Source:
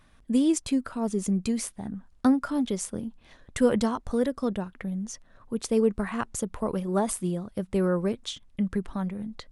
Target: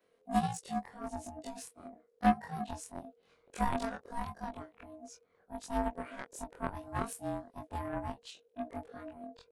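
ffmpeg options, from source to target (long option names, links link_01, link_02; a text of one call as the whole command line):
ffmpeg -i in.wav -af "afftfilt=real='re':imag='-im':win_size=2048:overlap=0.75,aeval=exprs='val(0)*sin(2*PI*470*n/s)':channel_layout=same,aeval=exprs='0.224*(cos(1*acos(clip(val(0)/0.224,-1,1)))-cos(1*PI/2))+0.0178*(cos(7*acos(clip(val(0)/0.224,-1,1)))-cos(7*PI/2))':channel_layout=same" out.wav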